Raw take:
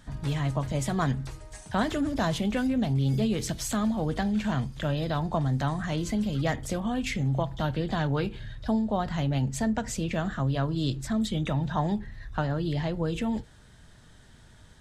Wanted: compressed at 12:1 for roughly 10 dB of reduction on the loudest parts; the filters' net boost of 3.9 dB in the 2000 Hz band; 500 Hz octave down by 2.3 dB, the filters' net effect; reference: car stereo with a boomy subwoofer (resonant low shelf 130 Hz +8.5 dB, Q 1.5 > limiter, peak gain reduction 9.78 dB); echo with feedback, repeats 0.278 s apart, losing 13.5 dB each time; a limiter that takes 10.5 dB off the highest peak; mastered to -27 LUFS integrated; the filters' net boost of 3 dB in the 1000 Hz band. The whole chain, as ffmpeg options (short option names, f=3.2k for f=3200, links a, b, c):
-af "equalizer=f=500:t=o:g=-4.5,equalizer=f=1k:t=o:g=5,equalizer=f=2k:t=o:g=3.5,acompressor=threshold=-31dB:ratio=12,alimiter=level_in=3.5dB:limit=-24dB:level=0:latency=1,volume=-3.5dB,lowshelf=f=130:t=q:w=1.5:g=8.5,aecho=1:1:278|556:0.211|0.0444,volume=12dB,alimiter=limit=-17.5dB:level=0:latency=1"